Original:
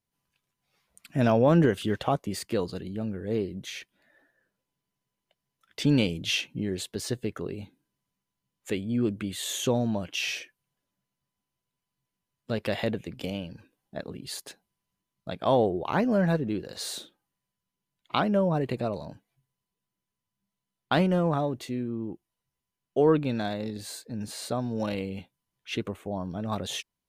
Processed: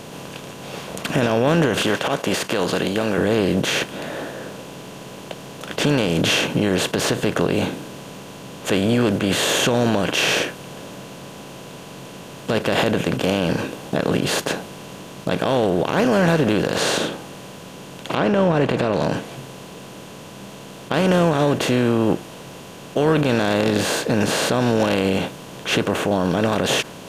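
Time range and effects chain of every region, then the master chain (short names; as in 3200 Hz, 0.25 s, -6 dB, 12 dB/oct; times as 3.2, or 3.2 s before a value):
1.82–3.18 HPF 960 Hz 6 dB/oct + compressor, threshold -37 dBFS
16.77–20.94 treble ducked by the level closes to 2300 Hz, closed at -24 dBFS + compressor 3:1, threshold -29 dBFS
whole clip: per-bin compression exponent 0.4; dynamic EQ 1600 Hz, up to +5 dB, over -41 dBFS, Q 1.8; maximiser +13 dB; gain -7.5 dB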